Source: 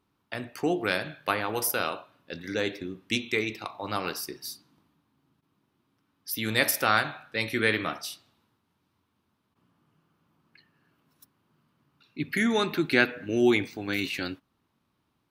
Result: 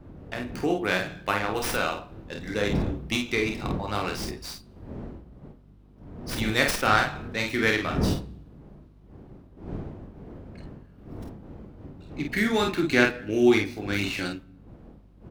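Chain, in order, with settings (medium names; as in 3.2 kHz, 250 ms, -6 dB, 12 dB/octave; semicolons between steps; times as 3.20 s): wind noise 260 Hz -39 dBFS; early reflections 28 ms -8 dB, 49 ms -4.5 dB; on a send at -24 dB: reverberation RT60 1.2 s, pre-delay 3 ms; on the sum: hum 50 Hz, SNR 26 dB; sliding maximum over 3 samples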